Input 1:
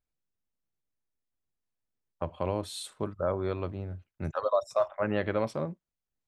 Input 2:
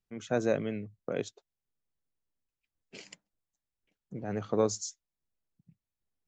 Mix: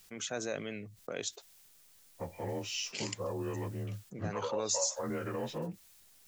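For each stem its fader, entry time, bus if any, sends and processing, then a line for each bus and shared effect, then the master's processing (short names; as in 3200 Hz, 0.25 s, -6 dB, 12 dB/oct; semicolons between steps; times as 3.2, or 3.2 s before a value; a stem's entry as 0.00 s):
-1.5 dB, 0.00 s, no send, inharmonic rescaling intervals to 88%; limiter -27.5 dBFS, peak gain reduction 10.5 dB
-7.5 dB, 0.00 s, no send, low shelf 460 Hz -9 dB; fast leveller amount 50%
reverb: off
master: high shelf 2900 Hz +10 dB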